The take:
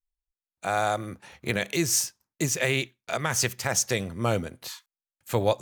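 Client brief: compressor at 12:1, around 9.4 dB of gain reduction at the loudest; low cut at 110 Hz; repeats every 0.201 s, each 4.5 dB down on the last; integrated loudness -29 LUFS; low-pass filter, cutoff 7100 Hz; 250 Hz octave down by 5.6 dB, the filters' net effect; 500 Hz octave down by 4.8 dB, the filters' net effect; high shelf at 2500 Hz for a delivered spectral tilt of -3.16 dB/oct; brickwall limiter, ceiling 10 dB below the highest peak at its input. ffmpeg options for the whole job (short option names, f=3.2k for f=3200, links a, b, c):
-af "highpass=110,lowpass=7.1k,equalizer=f=250:t=o:g=-6.5,equalizer=f=500:t=o:g=-4,highshelf=f=2.5k:g=-5.5,acompressor=threshold=-32dB:ratio=12,alimiter=level_in=3.5dB:limit=-24dB:level=0:latency=1,volume=-3.5dB,aecho=1:1:201|402|603|804|1005|1206|1407|1608|1809:0.596|0.357|0.214|0.129|0.0772|0.0463|0.0278|0.0167|0.01,volume=10dB"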